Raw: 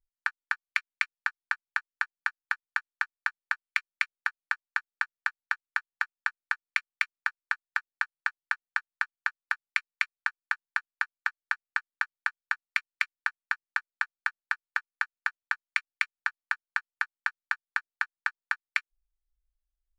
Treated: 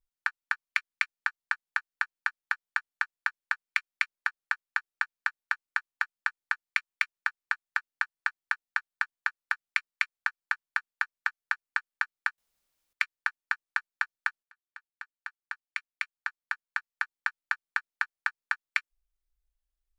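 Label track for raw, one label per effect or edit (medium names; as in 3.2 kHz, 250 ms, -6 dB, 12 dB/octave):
12.380000	12.930000	room tone
14.430000	17.410000	fade in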